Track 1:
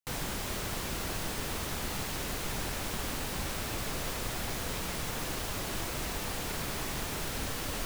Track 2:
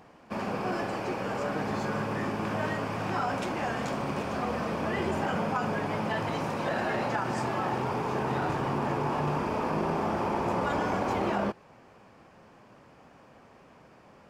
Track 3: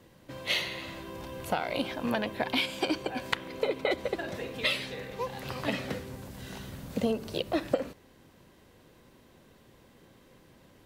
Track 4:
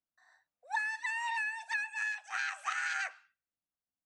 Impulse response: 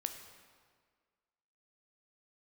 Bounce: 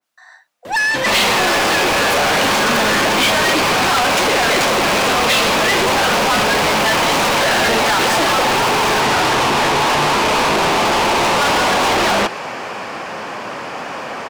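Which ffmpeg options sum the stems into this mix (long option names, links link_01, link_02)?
-filter_complex "[0:a]adelay=1150,volume=-12.5dB[link_01];[1:a]adelay=750,volume=2.5dB[link_02];[2:a]tiltshelf=frequency=970:gain=3.5,adelay=650,volume=-1.5dB[link_03];[3:a]volume=-6.5dB[link_04];[link_01][link_02][link_03][link_04]amix=inputs=4:normalize=0,asplit=2[link_05][link_06];[link_06]highpass=frequency=720:poles=1,volume=36dB,asoftclip=type=tanh:threshold=-9.5dB[link_07];[link_05][link_07]amix=inputs=2:normalize=0,lowpass=frequency=5800:poles=1,volume=-6dB,adynamicequalizer=threshold=0.0316:dfrequency=2000:dqfactor=0.7:tfrequency=2000:tqfactor=0.7:attack=5:release=100:ratio=0.375:range=2.5:mode=boostabove:tftype=highshelf"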